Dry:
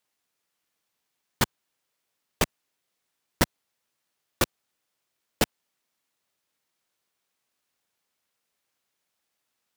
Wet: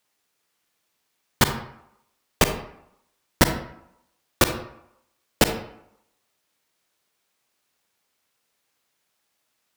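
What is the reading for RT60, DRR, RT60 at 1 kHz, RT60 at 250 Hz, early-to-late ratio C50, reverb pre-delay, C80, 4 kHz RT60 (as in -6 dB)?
0.80 s, 7.0 dB, 0.85 s, 0.75 s, 8.5 dB, 33 ms, 11.5 dB, 0.45 s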